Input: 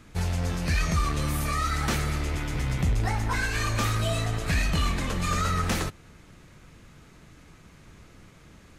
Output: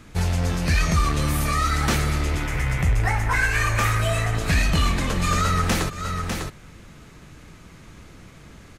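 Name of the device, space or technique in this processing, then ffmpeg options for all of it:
ducked delay: -filter_complex "[0:a]asplit=3[a][b][c];[b]adelay=600,volume=-6dB[d];[c]apad=whole_len=413929[e];[d][e]sidechaincompress=threshold=-41dB:ratio=8:attack=42:release=180[f];[a][f]amix=inputs=2:normalize=0,asettb=1/sr,asplit=3[g][h][i];[g]atrim=end=2.464[j];[h]atrim=start=2.46:end=4.35,asetpts=PTS-STARTPTS,afade=t=in:d=0.004:c=qsin,afade=t=out:st=1.886:d=0.004:c=qsin,equalizer=f=250:t=o:w=1:g=-8,equalizer=f=2k:t=o:w=1:g=6,equalizer=f=4k:t=o:w=1:g=-7[k];[i]atrim=start=4.346[l];[j][k]acrossfade=d=0.004:c1=hsin:c2=qsin[m];[m][l]acrossfade=d=0.004:c1=qsin:c2=hsin,volume=5dB"

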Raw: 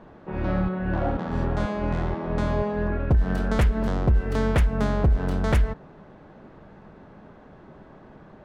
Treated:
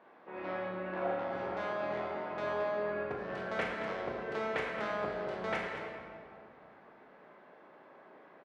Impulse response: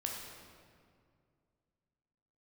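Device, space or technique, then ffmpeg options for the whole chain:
station announcement: -filter_complex "[0:a]highpass=460,lowpass=4.3k,equalizer=f=2.2k:t=o:w=0.55:g=5,aecho=1:1:37.9|221.6:0.282|0.282[a];[1:a]atrim=start_sample=2205[b];[a][b]afir=irnorm=-1:irlink=0,volume=-7dB"

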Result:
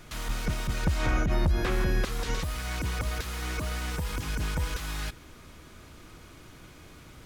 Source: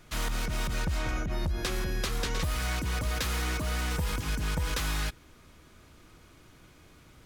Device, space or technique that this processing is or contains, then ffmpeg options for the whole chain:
de-esser from a sidechain: -filter_complex "[0:a]asettb=1/sr,asplit=3[a][b][c];[a]atrim=end=1.064[d];[b]atrim=start=1.06:end=2.05,asetpts=PTS-STARTPTS,afade=t=in:d=0.004:c=qsin,afade=t=out:st=0.986:d=0.004:c=qsin,acrossover=split=2500[e][f];[f]acompressor=threshold=-48dB:ratio=4:attack=1:release=60[g];[e][g]amix=inputs=2:normalize=0[h];[c]atrim=start=2.046[i];[d][h]acrossfade=d=0.004:c1=hsin:c2=qsin[j];[j][i]acrossfade=d=0.004:c1=qsin:c2=hsin,asplit=2[k][l];[l]highpass=f=6.7k:w=0.5412,highpass=f=6.7k:w=1.3066,apad=whole_len=319775[m];[k][m]sidechaincompress=threshold=-52dB:ratio=6:attack=2.4:release=21,volume=6dB"

